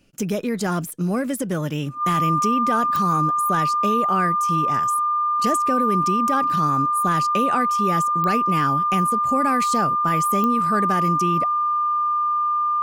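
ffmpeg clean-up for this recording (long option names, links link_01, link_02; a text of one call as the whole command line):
ffmpeg -i in.wav -af "adeclick=threshold=4,bandreject=frequency=1200:width=30" out.wav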